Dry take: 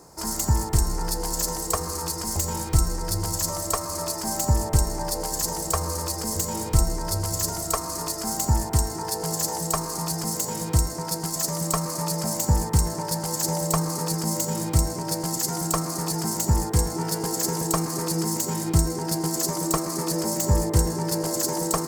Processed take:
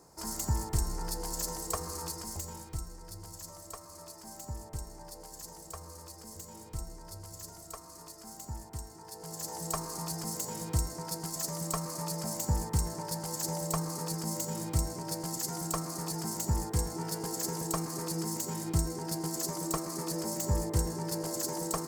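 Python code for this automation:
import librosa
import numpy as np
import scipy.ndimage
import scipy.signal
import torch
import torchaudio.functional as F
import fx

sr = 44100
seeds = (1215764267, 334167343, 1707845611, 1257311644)

y = fx.gain(x, sr, db=fx.line((2.06, -9.0), (2.87, -19.5), (9.03, -19.5), (9.7, -9.0)))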